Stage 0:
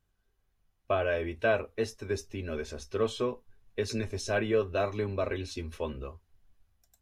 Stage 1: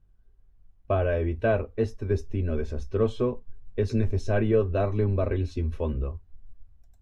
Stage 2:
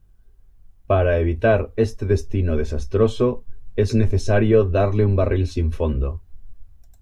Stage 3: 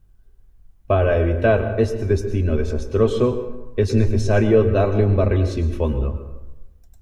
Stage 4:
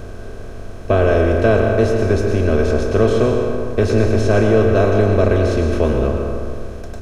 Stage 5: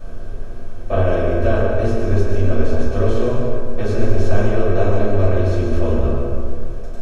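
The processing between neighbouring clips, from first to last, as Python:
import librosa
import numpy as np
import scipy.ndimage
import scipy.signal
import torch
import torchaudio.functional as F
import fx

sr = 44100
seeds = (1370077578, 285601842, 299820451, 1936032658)

y1 = fx.tilt_eq(x, sr, slope=-3.5)
y2 = fx.high_shelf(y1, sr, hz=5400.0, db=8.5)
y2 = y2 * 10.0 ** (7.0 / 20.0)
y3 = fx.rev_plate(y2, sr, seeds[0], rt60_s=1.0, hf_ratio=0.55, predelay_ms=95, drr_db=9.5)
y4 = fx.bin_compress(y3, sr, power=0.4)
y4 = y4 * 10.0 ** (-2.0 / 20.0)
y5 = fx.room_shoebox(y4, sr, seeds[1], volume_m3=260.0, walls='furnished', distance_m=6.1)
y5 = y5 * 10.0 ** (-15.5 / 20.0)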